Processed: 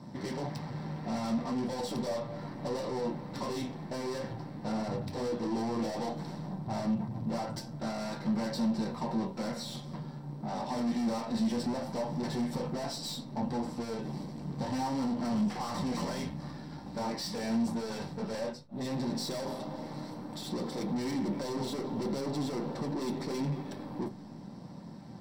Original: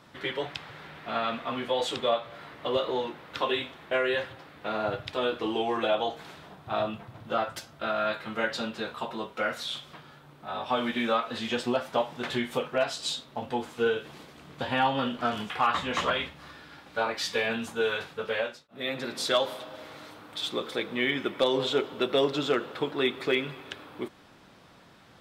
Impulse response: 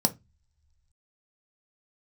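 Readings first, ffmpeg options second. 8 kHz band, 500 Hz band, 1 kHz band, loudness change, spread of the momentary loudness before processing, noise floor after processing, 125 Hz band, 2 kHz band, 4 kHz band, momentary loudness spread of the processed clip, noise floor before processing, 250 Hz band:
-1.5 dB, -8.0 dB, -7.5 dB, -5.5 dB, 14 LU, -45 dBFS, +6.0 dB, -15.0 dB, -10.5 dB, 9 LU, -55 dBFS, +3.0 dB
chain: -filter_complex "[0:a]lowshelf=f=410:g=9.5,aeval=exprs='(tanh(70.8*val(0)+0.65)-tanh(0.65))/70.8':c=same[s0];[1:a]atrim=start_sample=2205[s1];[s0][s1]afir=irnorm=-1:irlink=0,volume=0.355"

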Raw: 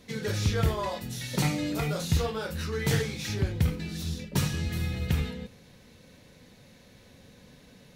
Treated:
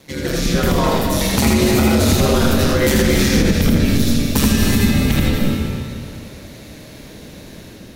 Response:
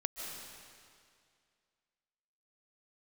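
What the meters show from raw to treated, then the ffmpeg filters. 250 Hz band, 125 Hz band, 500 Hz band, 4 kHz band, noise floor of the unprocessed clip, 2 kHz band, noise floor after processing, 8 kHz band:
+17.5 dB, +10.5 dB, +15.0 dB, +14.5 dB, -55 dBFS, +13.5 dB, -38 dBFS, +15.5 dB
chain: -filter_complex "[0:a]highpass=f=100:w=0.5412,highpass=f=100:w=1.3066,highshelf=f=9800:g=7.5,dynaudnorm=f=540:g=3:m=1.88,aeval=exprs='val(0)*sin(2*PI*70*n/s)':c=same,asplit=2[s0][s1];[1:a]atrim=start_sample=2205,lowshelf=f=350:g=6.5,adelay=82[s2];[s1][s2]afir=irnorm=-1:irlink=0,volume=0.841[s3];[s0][s3]amix=inputs=2:normalize=0,alimiter=level_in=4.73:limit=0.891:release=50:level=0:latency=1,volume=0.668"

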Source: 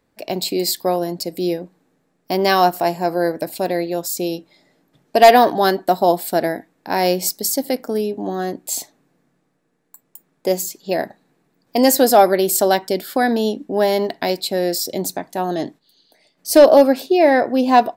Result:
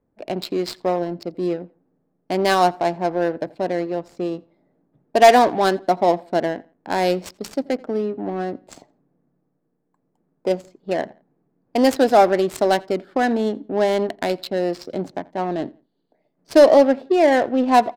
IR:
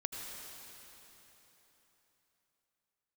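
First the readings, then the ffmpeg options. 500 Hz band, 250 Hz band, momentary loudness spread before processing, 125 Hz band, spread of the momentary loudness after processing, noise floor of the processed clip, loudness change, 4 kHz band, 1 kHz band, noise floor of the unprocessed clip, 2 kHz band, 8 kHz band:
-2.0 dB, -2.0 dB, 13 LU, -2.0 dB, 14 LU, -72 dBFS, -2.5 dB, -5.5 dB, -2.5 dB, -67 dBFS, -2.0 dB, -13.0 dB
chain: -filter_complex "[0:a]adynamicsmooth=sensitivity=1.5:basefreq=870,asplit=2[s0][s1];[s1]adelay=85,lowpass=f=4200:p=1,volume=0.0668,asplit=2[s2][s3];[s3]adelay=85,lowpass=f=4200:p=1,volume=0.32[s4];[s0][s2][s4]amix=inputs=3:normalize=0,volume=0.794"

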